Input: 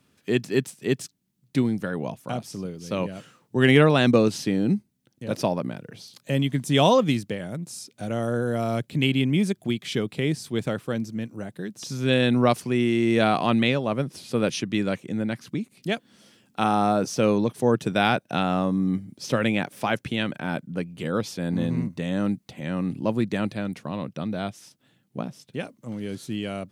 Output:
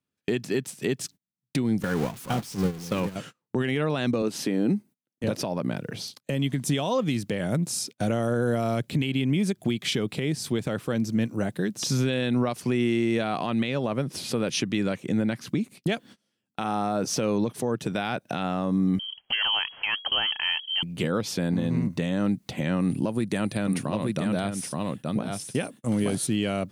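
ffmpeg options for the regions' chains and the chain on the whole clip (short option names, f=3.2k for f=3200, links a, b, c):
-filter_complex "[0:a]asettb=1/sr,asplit=3[a][b][c];[a]atrim=end=1.824[d];[b]atrim=start=1.82:end=3.16,asetpts=PTS-STARTPTS,afade=t=in:d=0.004:c=qsin,afade=t=out:st=1.336:d=0.004:c=qsin,aeval=exprs='val(0)+0.5*0.0282*sgn(val(0))':c=same,equalizer=f=620:w=7.3:g=-10,agate=range=-13dB:threshold=-29dB:ratio=16:release=100:detection=peak[e];[c]atrim=start=3.156[f];[d][e]acrossfade=d=0.004:c1=hsin:c2=qsin[g];[g][f]acrossfade=d=0.004:c1=qsin:c2=hsin,asettb=1/sr,asplit=3[h][i][j];[h]atrim=end=4.224[k];[i]atrim=start=4.22:end=5.24,asetpts=PTS-STARTPTS,afade=t=in:d=0.004:c=qsin,afade=t=out:st=1.016:d=0.004:c=qsin,highpass=210,equalizer=f=4.7k:t=o:w=1.7:g=-5.5[l];[j]atrim=start=5.236[m];[k][l]acrossfade=d=0.004:c1=hsin:c2=qsin[n];[n][m]acrossfade=d=0.004:c1=qsin:c2=hsin,asettb=1/sr,asplit=3[o][p][q];[o]atrim=end=18.994[r];[p]atrim=start=18.99:end=20.83,asetpts=PTS-STARTPTS,afade=t=in:d=0.004:c=qsin,afade=t=out:st=1.836:d=0.004:c=qsin,aeval=exprs='if(lt(val(0),0),0.708*val(0),val(0))':c=same,lowpass=f=2.8k:t=q:w=0.5098,lowpass=f=2.8k:t=q:w=0.6013,lowpass=f=2.8k:t=q:w=0.9,lowpass=f=2.8k:t=q:w=2.563,afreqshift=-3300[s];[q]atrim=start=20.826[t];[r][s]acrossfade=d=0.004:c1=hsin:c2=qsin[u];[u][t]acrossfade=d=0.004:c1=qsin:c2=hsin,asettb=1/sr,asplit=3[v][w][x];[v]atrim=end=22.804[y];[w]atrim=start=22.8:end=26.27,asetpts=PTS-STARTPTS,afade=t=in:d=0.004:c=qsin,afade=t=out:st=3.466:d=0.004:c=qsin,equalizer=f=9.5k:t=o:w=0.41:g=14.5,aecho=1:1:874:0.422,atrim=end_sample=153027[z];[x]atrim=start=26.266[aa];[y][z]acrossfade=d=0.004:c1=hsin:c2=qsin[ab];[ab][aa]acrossfade=d=0.004:c1=qsin:c2=hsin,agate=range=-31dB:threshold=-46dB:ratio=16:detection=peak,acompressor=threshold=-24dB:ratio=6,alimiter=level_in=0.5dB:limit=-24dB:level=0:latency=1:release=267,volume=-0.5dB,volume=8.5dB"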